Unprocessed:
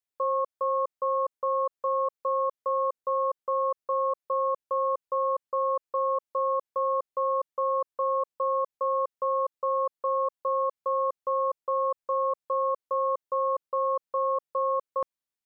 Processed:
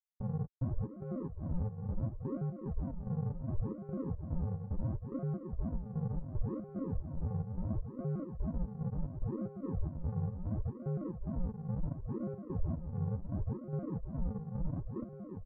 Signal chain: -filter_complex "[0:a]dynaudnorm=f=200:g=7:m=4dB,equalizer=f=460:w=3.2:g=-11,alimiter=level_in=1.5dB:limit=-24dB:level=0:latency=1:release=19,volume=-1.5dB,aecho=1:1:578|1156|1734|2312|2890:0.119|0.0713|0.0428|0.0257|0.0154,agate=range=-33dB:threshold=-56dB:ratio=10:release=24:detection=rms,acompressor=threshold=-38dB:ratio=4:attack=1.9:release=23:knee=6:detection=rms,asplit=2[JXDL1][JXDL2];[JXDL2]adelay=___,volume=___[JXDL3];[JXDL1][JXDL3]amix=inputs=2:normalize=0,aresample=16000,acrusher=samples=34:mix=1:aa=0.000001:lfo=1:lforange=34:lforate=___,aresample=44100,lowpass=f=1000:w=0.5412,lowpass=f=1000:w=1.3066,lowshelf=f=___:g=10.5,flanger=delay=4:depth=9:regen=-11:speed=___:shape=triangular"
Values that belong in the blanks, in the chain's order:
15, -10dB, 0.71, 240, 0.35